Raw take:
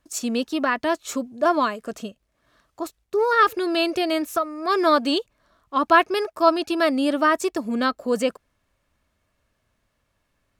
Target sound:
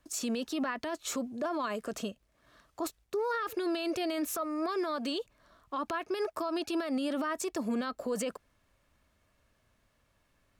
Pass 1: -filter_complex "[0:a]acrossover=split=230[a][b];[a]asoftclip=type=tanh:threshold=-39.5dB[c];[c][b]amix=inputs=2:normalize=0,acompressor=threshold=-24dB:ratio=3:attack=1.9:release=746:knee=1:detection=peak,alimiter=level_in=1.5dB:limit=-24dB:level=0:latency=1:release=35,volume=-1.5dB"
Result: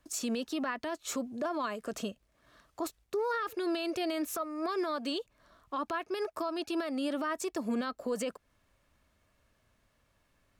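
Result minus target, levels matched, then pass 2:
compressor: peak gain reduction +4.5 dB
-filter_complex "[0:a]acrossover=split=230[a][b];[a]asoftclip=type=tanh:threshold=-39.5dB[c];[c][b]amix=inputs=2:normalize=0,acompressor=threshold=-17dB:ratio=3:attack=1.9:release=746:knee=1:detection=peak,alimiter=level_in=1.5dB:limit=-24dB:level=0:latency=1:release=35,volume=-1.5dB"

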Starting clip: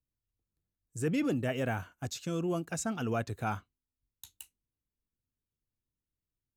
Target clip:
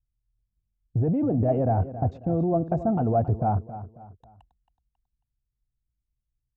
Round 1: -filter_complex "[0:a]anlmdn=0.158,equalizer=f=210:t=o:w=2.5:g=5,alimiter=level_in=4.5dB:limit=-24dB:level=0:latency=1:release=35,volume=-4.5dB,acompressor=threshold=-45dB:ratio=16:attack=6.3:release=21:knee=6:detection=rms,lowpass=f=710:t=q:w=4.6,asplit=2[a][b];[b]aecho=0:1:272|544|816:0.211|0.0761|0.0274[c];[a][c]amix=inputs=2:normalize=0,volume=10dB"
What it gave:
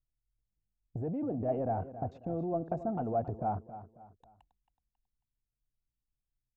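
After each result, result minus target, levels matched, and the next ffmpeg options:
compressor: peak gain reduction +8.5 dB; 125 Hz band -4.0 dB
-filter_complex "[0:a]anlmdn=0.158,equalizer=f=210:t=o:w=2.5:g=5,alimiter=level_in=4.5dB:limit=-24dB:level=0:latency=1:release=35,volume=-4.5dB,acompressor=threshold=-36dB:ratio=16:attack=6.3:release=21:knee=6:detection=rms,lowpass=f=710:t=q:w=4.6,asplit=2[a][b];[b]aecho=0:1:272|544|816:0.211|0.0761|0.0274[c];[a][c]amix=inputs=2:normalize=0,volume=10dB"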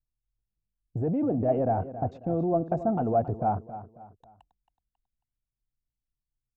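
125 Hz band -4.5 dB
-filter_complex "[0:a]anlmdn=0.158,equalizer=f=210:t=o:w=2.5:g=5,alimiter=level_in=4.5dB:limit=-24dB:level=0:latency=1:release=35,volume=-4.5dB,acompressor=threshold=-36dB:ratio=16:attack=6.3:release=21:knee=6:detection=rms,lowpass=f=710:t=q:w=4.6,equalizer=f=65:t=o:w=2.4:g=11.5,asplit=2[a][b];[b]aecho=0:1:272|544|816:0.211|0.0761|0.0274[c];[a][c]amix=inputs=2:normalize=0,volume=10dB"

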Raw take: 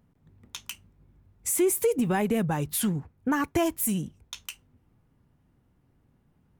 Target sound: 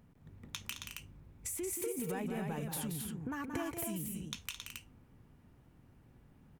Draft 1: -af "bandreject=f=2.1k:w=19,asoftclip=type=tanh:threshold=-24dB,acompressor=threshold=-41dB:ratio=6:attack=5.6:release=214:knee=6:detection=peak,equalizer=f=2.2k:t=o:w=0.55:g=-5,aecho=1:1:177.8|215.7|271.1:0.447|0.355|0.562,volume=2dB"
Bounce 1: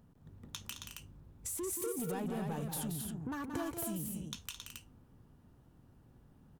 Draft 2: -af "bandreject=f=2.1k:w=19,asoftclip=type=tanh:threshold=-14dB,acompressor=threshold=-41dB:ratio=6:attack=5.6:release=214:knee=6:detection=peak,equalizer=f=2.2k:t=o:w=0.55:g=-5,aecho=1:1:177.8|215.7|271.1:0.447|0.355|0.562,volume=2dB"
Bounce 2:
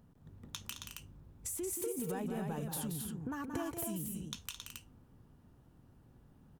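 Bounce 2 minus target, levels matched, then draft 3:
2000 Hz band -4.0 dB
-af "bandreject=f=2.1k:w=19,asoftclip=type=tanh:threshold=-14dB,acompressor=threshold=-41dB:ratio=6:attack=5.6:release=214:knee=6:detection=peak,equalizer=f=2.2k:t=o:w=0.55:g=4,aecho=1:1:177.8|215.7|271.1:0.447|0.355|0.562,volume=2dB"

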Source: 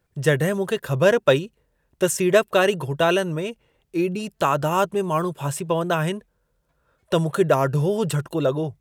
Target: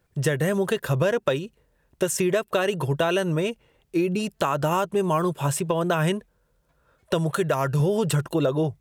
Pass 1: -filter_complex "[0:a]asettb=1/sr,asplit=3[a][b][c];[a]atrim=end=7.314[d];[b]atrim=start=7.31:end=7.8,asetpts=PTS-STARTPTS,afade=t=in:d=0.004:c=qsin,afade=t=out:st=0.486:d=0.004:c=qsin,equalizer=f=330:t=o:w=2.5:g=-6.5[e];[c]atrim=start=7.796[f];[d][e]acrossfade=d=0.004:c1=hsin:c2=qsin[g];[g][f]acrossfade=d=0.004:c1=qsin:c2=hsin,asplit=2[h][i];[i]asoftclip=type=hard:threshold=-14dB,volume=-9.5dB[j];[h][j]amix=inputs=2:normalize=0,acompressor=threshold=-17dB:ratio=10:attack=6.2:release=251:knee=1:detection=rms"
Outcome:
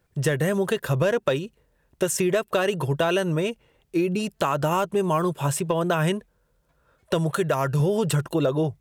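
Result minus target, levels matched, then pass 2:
hard clip: distortion +24 dB
-filter_complex "[0:a]asettb=1/sr,asplit=3[a][b][c];[a]atrim=end=7.314[d];[b]atrim=start=7.31:end=7.8,asetpts=PTS-STARTPTS,afade=t=in:d=0.004:c=qsin,afade=t=out:st=0.486:d=0.004:c=qsin,equalizer=f=330:t=o:w=2.5:g=-6.5[e];[c]atrim=start=7.796[f];[d][e]acrossfade=d=0.004:c1=hsin:c2=qsin[g];[g][f]acrossfade=d=0.004:c1=qsin:c2=hsin,asplit=2[h][i];[i]asoftclip=type=hard:threshold=-6.5dB,volume=-9.5dB[j];[h][j]amix=inputs=2:normalize=0,acompressor=threshold=-17dB:ratio=10:attack=6.2:release=251:knee=1:detection=rms"

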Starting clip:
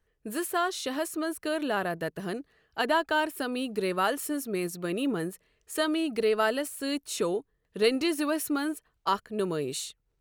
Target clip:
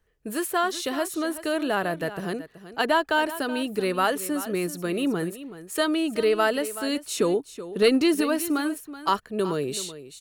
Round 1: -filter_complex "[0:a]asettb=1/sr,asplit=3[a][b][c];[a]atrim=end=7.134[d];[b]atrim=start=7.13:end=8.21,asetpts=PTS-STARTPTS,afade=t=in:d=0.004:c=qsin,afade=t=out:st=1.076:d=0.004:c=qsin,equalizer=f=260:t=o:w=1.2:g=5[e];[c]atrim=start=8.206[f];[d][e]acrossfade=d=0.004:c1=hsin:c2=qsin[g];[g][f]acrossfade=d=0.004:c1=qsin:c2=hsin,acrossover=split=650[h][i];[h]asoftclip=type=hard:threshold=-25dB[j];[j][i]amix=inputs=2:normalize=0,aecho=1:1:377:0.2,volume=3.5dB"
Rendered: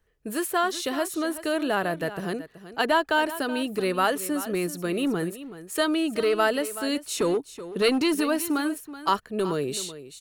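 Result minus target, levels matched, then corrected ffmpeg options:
hard clip: distortion +13 dB
-filter_complex "[0:a]asettb=1/sr,asplit=3[a][b][c];[a]atrim=end=7.134[d];[b]atrim=start=7.13:end=8.21,asetpts=PTS-STARTPTS,afade=t=in:d=0.004:c=qsin,afade=t=out:st=1.076:d=0.004:c=qsin,equalizer=f=260:t=o:w=1.2:g=5[e];[c]atrim=start=8.206[f];[d][e]acrossfade=d=0.004:c1=hsin:c2=qsin[g];[g][f]acrossfade=d=0.004:c1=qsin:c2=hsin,acrossover=split=650[h][i];[h]asoftclip=type=hard:threshold=-19dB[j];[j][i]amix=inputs=2:normalize=0,aecho=1:1:377:0.2,volume=3.5dB"

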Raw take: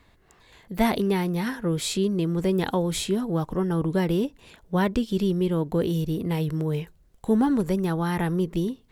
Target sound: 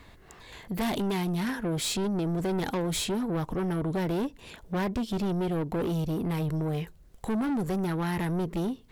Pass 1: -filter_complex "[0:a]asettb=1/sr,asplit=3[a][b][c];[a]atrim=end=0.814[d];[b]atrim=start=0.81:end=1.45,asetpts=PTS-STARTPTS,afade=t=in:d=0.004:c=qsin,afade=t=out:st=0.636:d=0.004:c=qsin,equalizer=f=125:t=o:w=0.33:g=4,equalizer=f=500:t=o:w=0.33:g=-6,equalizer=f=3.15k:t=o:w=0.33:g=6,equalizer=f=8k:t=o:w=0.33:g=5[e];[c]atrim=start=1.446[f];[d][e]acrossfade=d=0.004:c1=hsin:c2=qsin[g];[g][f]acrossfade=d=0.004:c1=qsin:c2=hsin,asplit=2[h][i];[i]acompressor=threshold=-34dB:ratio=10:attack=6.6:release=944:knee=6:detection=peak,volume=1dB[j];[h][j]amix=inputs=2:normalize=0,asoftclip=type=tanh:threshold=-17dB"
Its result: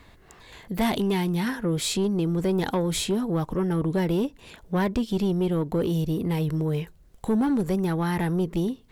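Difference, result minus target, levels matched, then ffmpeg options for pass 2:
soft clip: distortion -8 dB
-filter_complex "[0:a]asettb=1/sr,asplit=3[a][b][c];[a]atrim=end=0.814[d];[b]atrim=start=0.81:end=1.45,asetpts=PTS-STARTPTS,afade=t=in:d=0.004:c=qsin,afade=t=out:st=0.636:d=0.004:c=qsin,equalizer=f=125:t=o:w=0.33:g=4,equalizer=f=500:t=o:w=0.33:g=-6,equalizer=f=3.15k:t=o:w=0.33:g=6,equalizer=f=8k:t=o:w=0.33:g=5[e];[c]atrim=start=1.446[f];[d][e]acrossfade=d=0.004:c1=hsin:c2=qsin[g];[g][f]acrossfade=d=0.004:c1=qsin:c2=hsin,asplit=2[h][i];[i]acompressor=threshold=-34dB:ratio=10:attack=6.6:release=944:knee=6:detection=peak,volume=1dB[j];[h][j]amix=inputs=2:normalize=0,asoftclip=type=tanh:threshold=-25.5dB"

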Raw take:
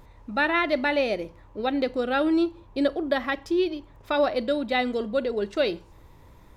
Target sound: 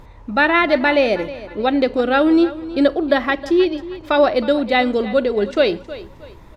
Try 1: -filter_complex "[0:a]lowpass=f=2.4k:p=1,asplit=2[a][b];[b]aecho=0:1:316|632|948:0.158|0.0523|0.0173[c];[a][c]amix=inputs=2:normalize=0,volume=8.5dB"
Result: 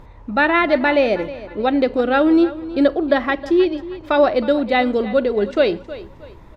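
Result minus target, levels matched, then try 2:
4000 Hz band -3.0 dB
-filter_complex "[0:a]lowpass=f=5.5k:p=1,asplit=2[a][b];[b]aecho=0:1:316|632|948:0.158|0.0523|0.0173[c];[a][c]amix=inputs=2:normalize=0,volume=8.5dB"

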